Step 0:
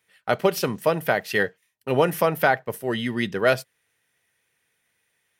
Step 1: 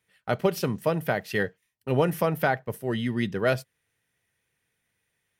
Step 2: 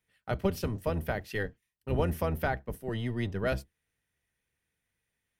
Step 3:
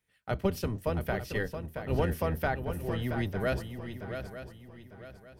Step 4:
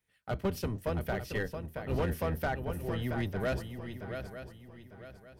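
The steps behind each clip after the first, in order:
low-shelf EQ 230 Hz +11 dB; level −6 dB
sub-octave generator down 1 octave, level +2 dB; level −7 dB
feedback echo with a long and a short gap by turns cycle 900 ms, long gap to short 3 to 1, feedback 32%, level −8.5 dB
hard clipping −23.5 dBFS, distortion −16 dB; level −1.5 dB

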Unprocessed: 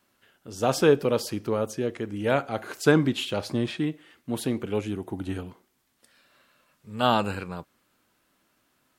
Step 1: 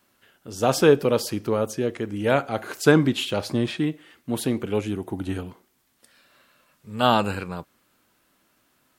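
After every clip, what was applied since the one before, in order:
high-shelf EQ 12,000 Hz +4 dB
level +3 dB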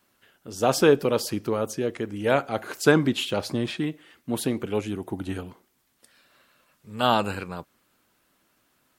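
harmonic and percussive parts rebalanced harmonic −4 dB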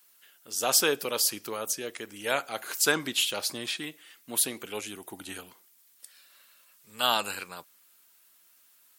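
spectral tilt +4.5 dB per octave
level −5 dB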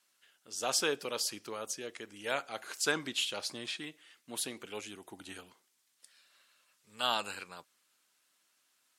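low-pass filter 8,100 Hz 12 dB per octave
level −6 dB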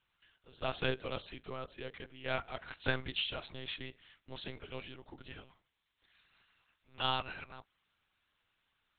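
one-pitch LPC vocoder at 8 kHz 130 Hz
level −1.5 dB

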